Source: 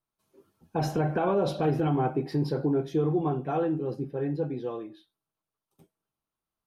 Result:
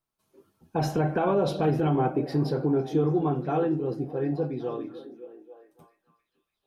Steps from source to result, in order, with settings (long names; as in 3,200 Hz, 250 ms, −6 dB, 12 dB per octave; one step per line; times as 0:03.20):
echo through a band-pass that steps 280 ms, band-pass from 220 Hz, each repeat 0.7 octaves, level −9.5 dB
level +1.5 dB